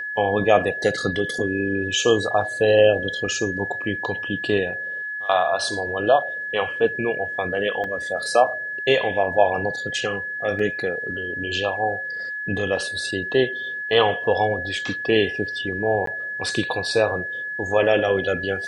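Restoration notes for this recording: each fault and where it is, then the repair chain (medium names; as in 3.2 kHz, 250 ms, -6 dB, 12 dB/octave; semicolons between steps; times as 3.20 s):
whine 1.7 kHz -27 dBFS
7.84 s: dropout 3.1 ms
10.59 s: dropout 3.5 ms
16.06–16.07 s: dropout 13 ms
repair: band-stop 1.7 kHz, Q 30; interpolate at 7.84 s, 3.1 ms; interpolate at 10.59 s, 3.5 ms; interpolate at 16.06 s, 13 ms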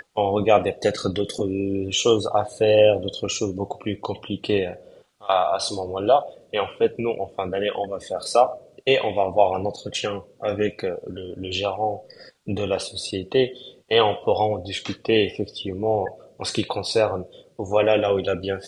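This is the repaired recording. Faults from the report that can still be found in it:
nothing left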